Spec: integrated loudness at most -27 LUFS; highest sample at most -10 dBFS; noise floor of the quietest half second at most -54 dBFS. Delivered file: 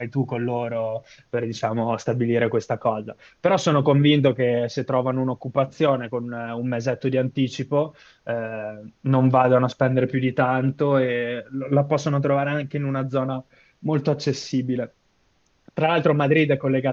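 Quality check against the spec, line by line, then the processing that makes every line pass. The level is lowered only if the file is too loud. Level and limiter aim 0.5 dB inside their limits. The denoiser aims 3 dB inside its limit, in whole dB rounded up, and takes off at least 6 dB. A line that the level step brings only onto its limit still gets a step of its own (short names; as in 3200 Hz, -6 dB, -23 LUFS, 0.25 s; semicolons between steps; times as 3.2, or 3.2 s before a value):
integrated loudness -22.5 LUFS: fail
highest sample -4.5 dBFS: fail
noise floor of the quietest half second -64 dBFS: OK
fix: gain -5 dB; limiter -10.5 dBFS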